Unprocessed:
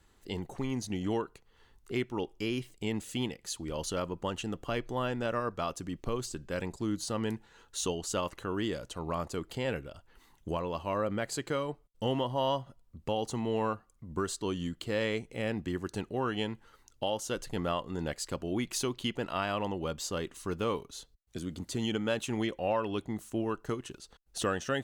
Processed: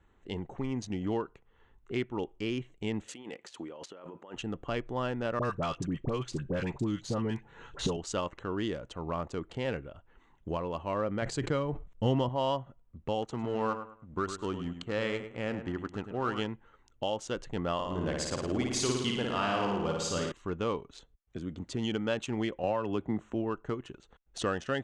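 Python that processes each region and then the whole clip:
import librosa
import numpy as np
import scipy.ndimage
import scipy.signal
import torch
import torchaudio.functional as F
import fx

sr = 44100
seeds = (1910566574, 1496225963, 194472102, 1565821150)

y = fx.chain(x, sr, fx.highpass(hz=310.0, slope=12),
    fx.over_compress(threshold_db=-44.0, ratio=-1.0), at=(3.08, 4.36))
y = fx.chain(y, sr, fx.peak_eq(hz=140.0, db=8.0, octaves=0.6),
    fx.dispersion(late='highs', ms=58.0, hz=1100.0),
    fx.band_squash(depth_pct=100), at=(5.39, 7.97))
y = fx.chain(y, sr, fx.low_shelf(hz=180.0, db=10.5),
    fx.sustainer(db_per_s=98.0), at=(11.22, 12.29))
y = fx.chain(y, sr, fx.law_mismatch(coded='A'),
    fx.peak_eq(hz=1300.0, db=7.0, octaves=0.34),
    fx.echo_feedback(ms=104, feedback_pct=28, wet_db=-9), at=(13.22, 16.46))
y = fx.chain(y, sr, fx.high_shelf(hz=8200.0, db=6.5),
    fx.room_flutter(wall_m=9.5, rt60_s=1.2), at=(17.74, 20.32))
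y = fx.chain(y, sr, fx.high_shelf(hz=3300.0, db=-6.0),
    fx.band_squash(depth_pct=100), at=(22.63, 23.34))
y = fx.wiener(y, sr, points=9)
y = scipy.signal.sosfilt(scipy.signal.butter(4, 7700.0, 'lowpass', fs=sr, output='sos'), y)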